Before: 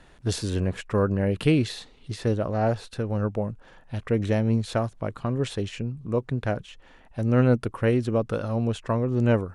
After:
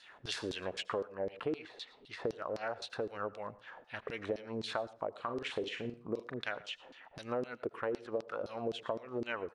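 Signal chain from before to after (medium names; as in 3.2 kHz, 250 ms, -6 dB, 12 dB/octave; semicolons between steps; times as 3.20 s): dynamic bell 150 Hz, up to -6 dB, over -34 dBFS, Q 0.76; LFO band-pass saw down 3.9 Hz 330–5100 Hz; 1.19–2.26 s: treble shelf 4.3 kHz -10 dB; 5.13–6.34 s: doubling 42 ms -8 dB; delay 114 ms -23.5 dB; compression 6:1, threshold -42 dBFS, peak gain reduction 17 dB; on a send at -20.5 dB: reverberation RT60 0.35 s, pre-delay 72 ms; on the sum: trim +8 dB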